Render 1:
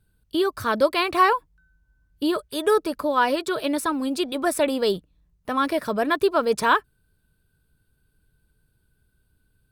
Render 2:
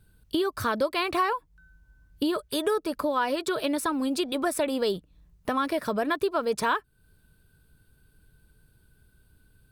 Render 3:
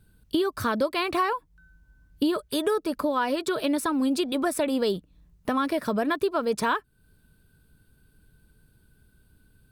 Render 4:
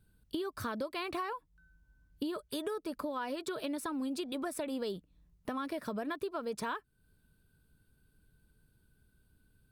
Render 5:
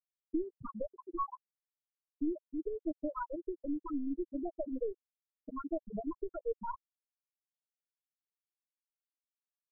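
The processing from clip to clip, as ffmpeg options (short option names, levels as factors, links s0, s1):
-af "acompressor=threshold=0.0224:ratio=3,volume=2"
-af "equalizer=f=230:w=1.5:g=4.5"
-af "acompressor=threshold=0.0501:ratio=2.5,volume=0.376"
-af "aeval=exprs='0.0841*(cos(1*acos(clip(val(0)/0.0841,-1,1)))-cos(1*PI/2))+0.0106*(cos(6*acos(clip(val(0)/0.0841,-1,1)))-cos(6*PI/2))':c=same,afftfilt=real='re*gte(hypot(re,im),0.112)':imag='im*gte(hypot(re,im),0.112)':win_size=1024:overlap=0.75,aecho=1:1:6.3:0.37,volume=1.19"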